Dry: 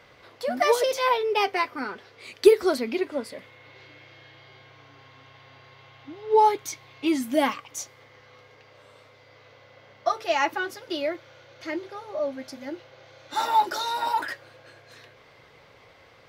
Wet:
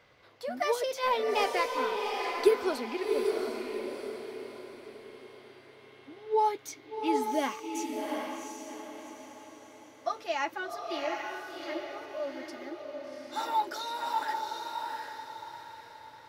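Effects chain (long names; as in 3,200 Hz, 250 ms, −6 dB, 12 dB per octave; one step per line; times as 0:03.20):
0:01.03–0:01.72: leveller curve on the samples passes 1
on a send: feedback delay with all-pass diffusion 750 ms, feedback 40%, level −3 dB
on the sum: level −8 dB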